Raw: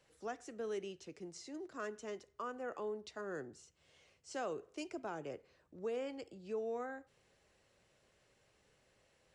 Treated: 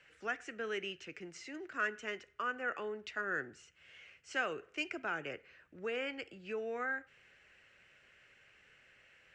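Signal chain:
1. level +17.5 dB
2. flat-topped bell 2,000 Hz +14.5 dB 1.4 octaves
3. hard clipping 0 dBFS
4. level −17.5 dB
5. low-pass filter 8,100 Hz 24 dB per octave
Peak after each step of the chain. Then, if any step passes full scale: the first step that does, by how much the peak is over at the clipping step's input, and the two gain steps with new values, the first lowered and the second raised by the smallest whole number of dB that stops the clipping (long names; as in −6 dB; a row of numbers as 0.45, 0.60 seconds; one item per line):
−13.5, −5.0, −5.0, −22.5, −22.5 dBFS
no step passes full scale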